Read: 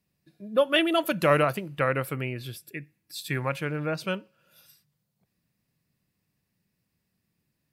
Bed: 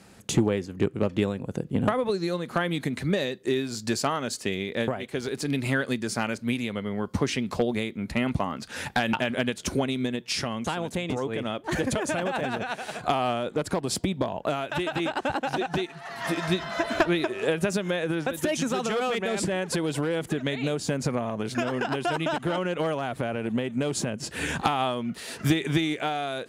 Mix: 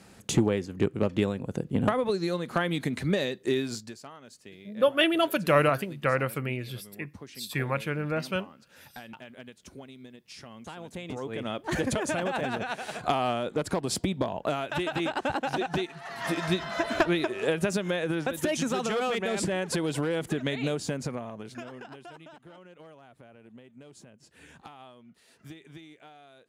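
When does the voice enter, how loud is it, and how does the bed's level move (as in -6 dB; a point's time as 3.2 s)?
4.25 s, -0.5 dB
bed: 3.74 s -1 dB
3.95 s -19.5 dB
10.21 s -19.5 dB
11.58 s -1.5 dB
20.71 s -1.5 dB
22.36 s -23 dB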